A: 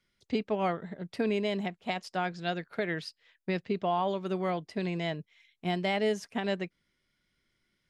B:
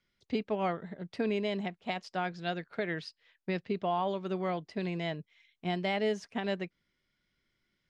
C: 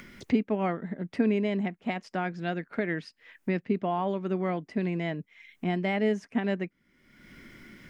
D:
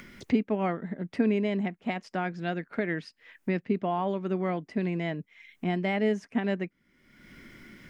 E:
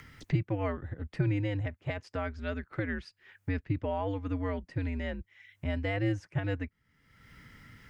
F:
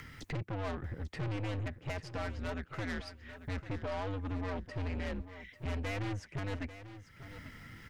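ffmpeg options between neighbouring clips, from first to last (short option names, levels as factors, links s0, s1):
-af "lowpass=6400,volume=0.794"
-af "equalizer=f=250:t=o:w=1:g=10,equalizer=f=2000:t=o:w=1:g=5,equalizer=f=4000:t=o:w=1:g=-8,acompressor=mode=upward:threshold=0.0398:ratio=2.5"
-af anull
-af "afreqshift=-99,volume=0.668"
-af "aeval=exprs='(tanh(79.4*val(0)+0.3)-tanh(0.3))/79.4':c=same,aecho=1:1:843|1686:0.224|0.0358,volume=1.5"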